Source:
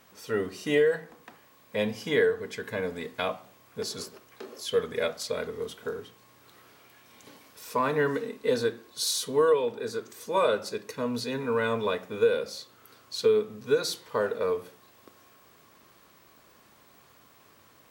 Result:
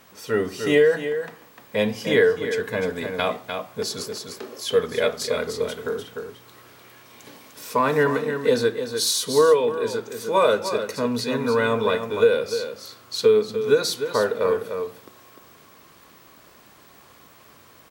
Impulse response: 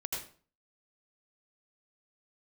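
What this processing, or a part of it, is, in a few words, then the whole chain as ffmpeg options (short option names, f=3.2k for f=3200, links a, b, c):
ducked delay: -filter_complex "[0:a]asplit=3[a][b][c];[b]adelay=300,volume=-5.5dB[d];[c]apad=whole_len=802819[e];[d][e]sidechaincompress=threshold=-26dB:ratio=8:attack=43:release=1010[f];[a][f]amix=inputs=2:normalize=0,volume=6dB"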